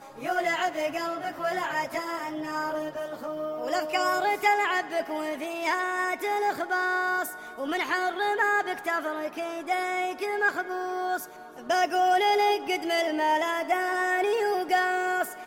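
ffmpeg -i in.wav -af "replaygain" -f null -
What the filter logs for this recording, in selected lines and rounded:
track_gain = +7.4 dB
track_peak = 0.193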